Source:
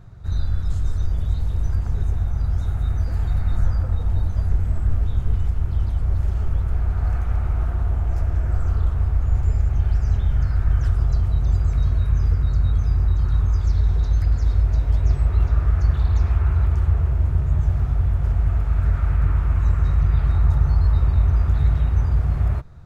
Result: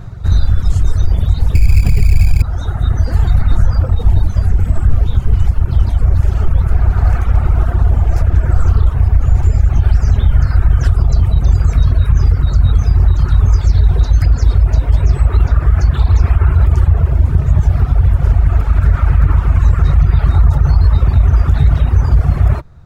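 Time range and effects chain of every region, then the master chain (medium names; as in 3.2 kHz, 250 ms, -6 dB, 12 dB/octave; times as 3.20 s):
1.55–2.42 s: tilt EQ -2.5 dB/octave + sample-rate reducer 2.4 kHz + loudspeaker Doppler distortion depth 0.19 ms
whole clip: reverb removal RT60 1.9 s; loudness maximiser +16 dB; trim -1 dB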